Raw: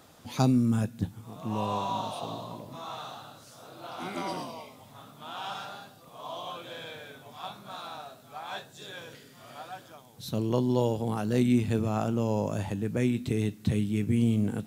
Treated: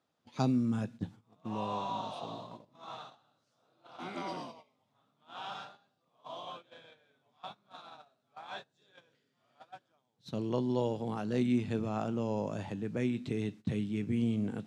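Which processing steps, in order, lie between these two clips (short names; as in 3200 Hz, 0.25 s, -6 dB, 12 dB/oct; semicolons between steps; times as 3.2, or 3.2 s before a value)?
gate -39 dBFS, range -19 dB; BPF 120–5500 Hz; gain -5 dB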